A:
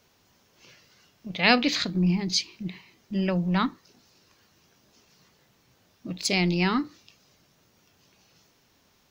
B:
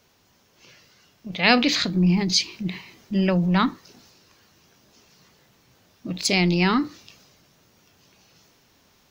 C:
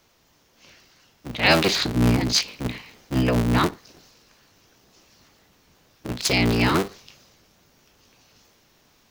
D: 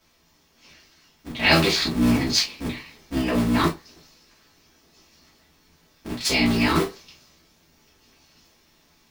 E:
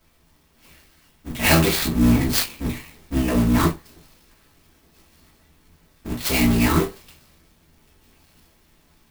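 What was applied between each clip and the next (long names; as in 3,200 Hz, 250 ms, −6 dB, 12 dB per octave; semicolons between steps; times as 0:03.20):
in parallel at +1.5 dB: speech leveller; on the sum: transient designer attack 0 dB, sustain +4 dB; level −2.5 dB
sub-harmonics by changed cycles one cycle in 3, inverted
reverb whose tail is shaped and stops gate 80 ms falling, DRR −6 dB; level −7.5 dB
low-shelf EQ 130 Hz +10.5 dB; converter with an unsteady clock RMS 0.042 ms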